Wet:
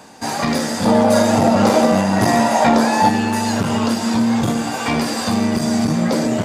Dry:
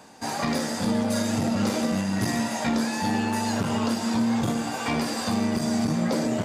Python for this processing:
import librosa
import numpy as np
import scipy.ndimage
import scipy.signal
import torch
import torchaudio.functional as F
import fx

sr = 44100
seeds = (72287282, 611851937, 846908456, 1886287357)

y = fx.peak_eq(x, sr, hz=740.0, db=10.5, octaves=1.7, at=(0.85, 3.09))
y = y * 10.0 ** (7.0 / 20.0)